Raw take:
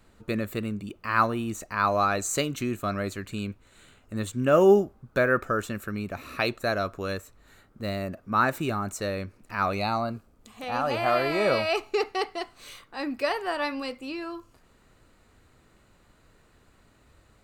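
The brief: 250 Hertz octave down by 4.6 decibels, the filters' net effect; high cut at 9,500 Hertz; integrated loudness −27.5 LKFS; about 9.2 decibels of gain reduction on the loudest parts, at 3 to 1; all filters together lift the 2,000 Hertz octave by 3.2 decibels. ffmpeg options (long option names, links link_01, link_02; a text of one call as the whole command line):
ffmpeg -i in.wav -af "lowpass=9500,equalizer=frequency=250:width_type=o:gain=-6.5,equalizer=frequency=2000:width_type=o:gain=4.5,acompressor=threshold=-28dB:ratio=3,volume=5dB" out.wav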